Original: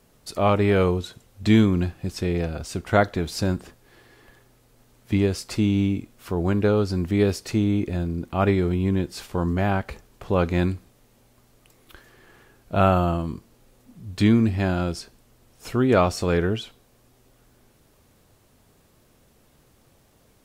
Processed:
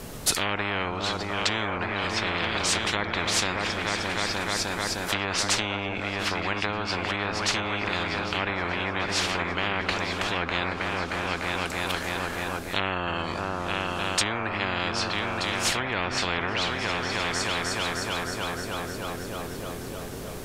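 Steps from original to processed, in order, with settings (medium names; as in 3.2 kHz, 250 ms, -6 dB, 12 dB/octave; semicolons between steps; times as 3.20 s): delay with an opening low-pass 307 ms, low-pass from 200 Hz, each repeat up 2 oct, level -6 dB; low-pass that closes with the level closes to 1.2 kHz, closed at -15.5 dBFS; spectrum-flattening compressor 10:1; trim -1.5 dB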